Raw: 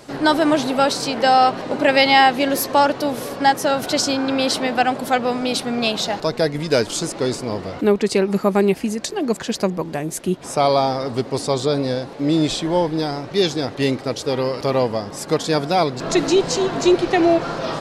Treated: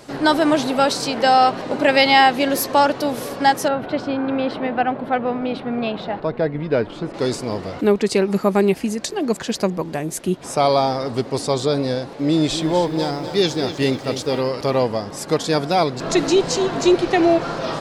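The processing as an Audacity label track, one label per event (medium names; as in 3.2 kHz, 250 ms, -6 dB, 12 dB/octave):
3.680000	7.140000	distance through air 490 m
12.280000	14.410000	bit-crushed delay 249 ms, feedback 55%, word length 8-bit, level -10.5 dB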